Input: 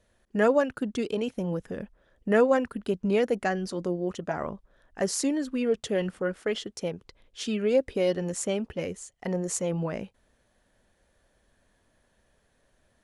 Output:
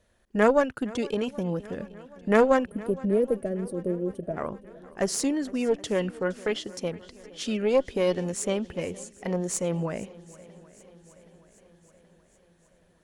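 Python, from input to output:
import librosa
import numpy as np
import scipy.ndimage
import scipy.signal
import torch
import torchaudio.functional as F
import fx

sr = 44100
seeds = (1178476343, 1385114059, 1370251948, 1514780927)

y = fx.cheby_harmonics(x, sr, harmonics=(2, 5, 7), levels_db=(-9, -25, -30), full_scale_db=-8.5)
y = fx.spec_box(y, sr, start_s=2.65, length_s=1.72, low_hz=680.0, high_hz=8200.0, gain_db=-20)
y = fx.echo_swing(y, sr, ms=775, ratio=1.5, feedback_pct=54, wet_db=-21.0)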